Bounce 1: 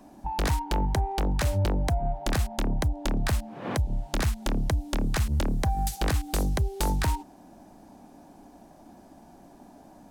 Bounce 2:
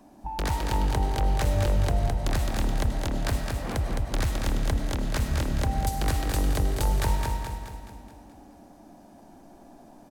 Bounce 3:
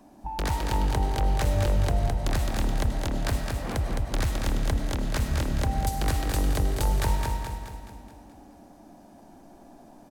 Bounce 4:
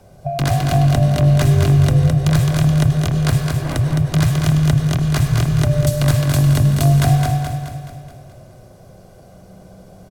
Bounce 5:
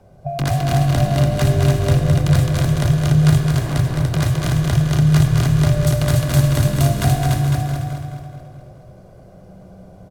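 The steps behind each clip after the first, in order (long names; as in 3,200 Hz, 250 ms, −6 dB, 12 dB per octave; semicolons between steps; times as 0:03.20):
on a send: repeating echo 213 ms, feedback 52%, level −4 dB; on the sum: comb and all-pass reverb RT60 1.2 s, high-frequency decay 0.7×, pre-delay 60 ms, DRR 6 dB; level −2.5 dB
no processing that can be heard
comb filter 2.3 ms, depth 42%; frequency shifter −190 Hz; level +8 dB
bouncing-ball delay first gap 290 ms, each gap 0.75×, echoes 5; one half of a high-frequency compander decoder only; level −2 dB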